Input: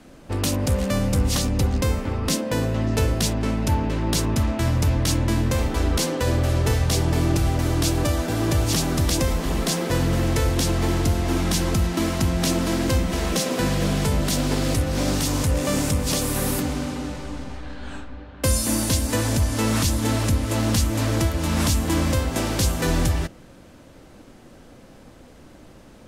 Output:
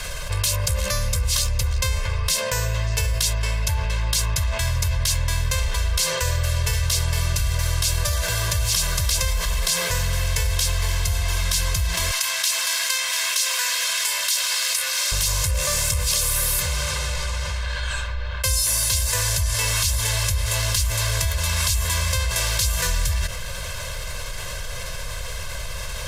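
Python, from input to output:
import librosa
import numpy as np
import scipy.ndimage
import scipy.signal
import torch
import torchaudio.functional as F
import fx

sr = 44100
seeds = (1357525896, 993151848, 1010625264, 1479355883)

y = fx.highpass(x, sr, hz=1100.0, slope=12, at=(12.11, 15.12))
y = fx.tone_stack(y, sr, knobs='10-0-10')
y = y + 0.92 * np.pad(y, (int(1.9 * sr / 1000.0), 0))[:len(y)]
y = fx.env_flatten(y, sr, amount_pct=70)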